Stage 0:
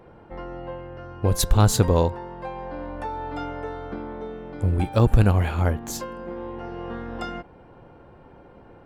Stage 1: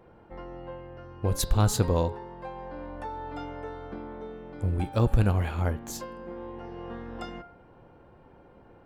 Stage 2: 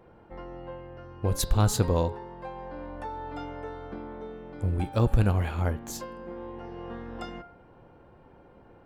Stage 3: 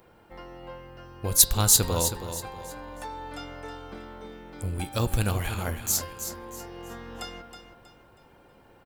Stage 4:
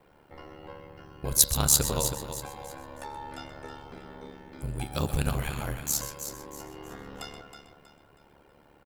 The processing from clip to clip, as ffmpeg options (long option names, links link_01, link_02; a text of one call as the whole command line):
ffmpeg -i in.wav -af "bandreject=frequency=140.1:width_type=h:width=4,bandreject=frequency=280.2:width_type=h:width=4,bandreject=frequency=420.3:width_type=h:width=4,bandreject=frequency=560.4:width_type=h:width=4,bandreject=frequency=700.5:width_type=h:width=4,bandreject=frequency=840.6:width_type=h:width=4,bandreject=frequency=980.7:width_type=h:width=4,bandreject=frequency=1120.8:width_type=h:width=4,bandreject=frequency=1260.9:width_type=h:width=4,bandreject=frequency=1401:width_type=h:width=4,bandreject=frequency=1541.1:width_type=h:width=4,bandreject=frequency=1681.2:width_type=h:width=4,bandreject=frequency=1821.3:width_type=h:width=4,bandreject=frequency=1961.4:width_type=h:width=4,bandreject=frequency=2101.5:width_type=h:width=4,bandreject=frequency=2241.6:width_type=h:width=4,bandreject=frequency=2381.7:width_type=h:width=4,bandreject=frequency=2521.8:width_type=h:width=4,bandreject=frequency=2661.9:width_type=h:width=4,bandreject=frequency=2802:width_type=h:width=4,bandreject=frequency=2942.1:width_type=h:width=4,bandreject=frequency=3082.2:width_type=h:width=4,bandreject=frequency=3222.3:width_type=h:width=4,bandreject=frequency=3362.4:width_type=h:width=4,bandreject=frequency=3502.5:width_type=h:width=4,bandreject=frequency=3642.6:width_type=h:width=4,bandreject=frequency=3782.7:width_type=h:width=4,bandreject=frequency=3922.8:width_type=h:width=4,bandreject=frequency=4062.9:width_type=h:width=4,bandreject=frequency=4203:width_type=h:width=4,bandreject=frequency=4343.1:width_type=h:width=4,bandreject=frequency=4483.2:width_type=h:width=4,bandreject=frequency=4623.3:width_type=h:width=4,bandreject=frequency=4763.4:width_type=h:width=4,bandreject=frequency=4903.5:width_type=h:width=4,bandreject=frequency=5043.6:width_type=h:width=4,bandreject=frequency=5183.7:width_type=h:width=4,volume=-5.5dB" out.wav
ffmpeg -i in.wav -af anull out.wav
ffmpeg -i in.wav -filter_complex "[0:a]crystalizer=i=7.5:c=0,asplit=2[link_01][link_02];[link_02]aecho=0:1:320|640|960|1280:0.335|0.114|0.0387|0.0132[link_03];[link_01][link_03]amix=inputs=2:normalize=0,volume=-4dB" out.wav
ffmpeg -i in.wav -filter_complex "[0:a]asplit=2[link_01][link_02];[link_02]adelay=128.3,volume=-10dB,highshelf=frequency=4000:gain=-2.89[link_03];[link_01][link_03]amix=inputs=2:normalize=0,aeval=exprs='val(0)*sin(2*PI*36*n/s)':channel_layout=same" out.wav